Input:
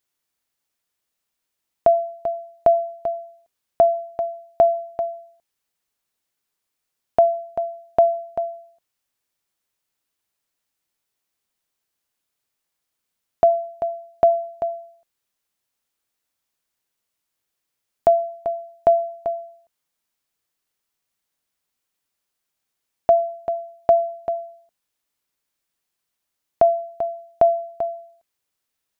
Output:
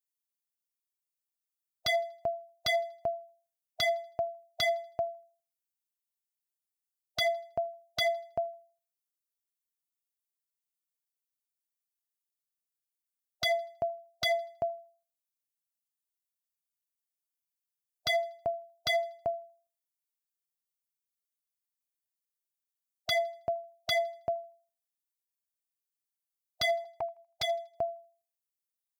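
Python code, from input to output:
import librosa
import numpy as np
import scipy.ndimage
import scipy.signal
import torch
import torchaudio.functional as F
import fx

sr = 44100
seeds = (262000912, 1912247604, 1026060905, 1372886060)

y = fx.bin_expand(x, sr, power=1.5)
y = fx.peak_eq(y, sr, hz=110.0, db=10.5, octaves=1.5)
y = 10.0 ** (-20.5 / 20.0) * (np.abs((y / 10.0 ** (-20.5 / 20.0) + 3.0) % 4.0 - 2.0) - 1.0)
y = fx.env_flanger(y, sr, rest_ms=5.9, full_db=-26.5, at=(26.84, 27.75))
y = fx.echo_thinned(y, sr, ms=80, feedback_pct=39, hz=770.0, wet_db=-23.5)
y = y * 10.0 ** (-2.0 / 20.0)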